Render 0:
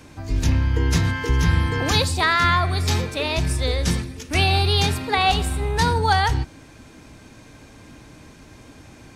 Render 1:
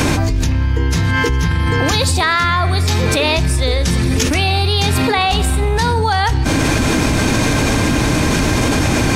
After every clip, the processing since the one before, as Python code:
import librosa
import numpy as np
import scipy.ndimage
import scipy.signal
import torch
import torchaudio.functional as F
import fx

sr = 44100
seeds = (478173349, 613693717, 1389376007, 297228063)

y = fx.env_flatten(x, sr, amount_pct=100)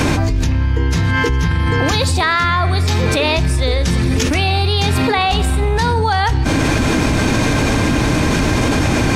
y = fx.high_shelf(x, sr, hz=6300.0, db=-6.5)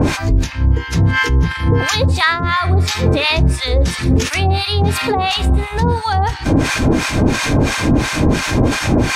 y = fx.harmonic_tremolo(x, sr, hz=2.9, depth_pct=100, crossover_hz=900.0)
y = y * 10.0 ** (4.5 / 20.0)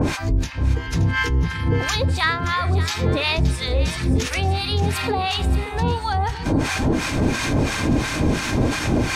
y = x + 10.0 ** (-12.5 / 20.0) * np.pad(x, (int(574 * sr / 1000.0), 0))[:len(x)]
y = y * 10.0 ** (-6.0 / 20.0)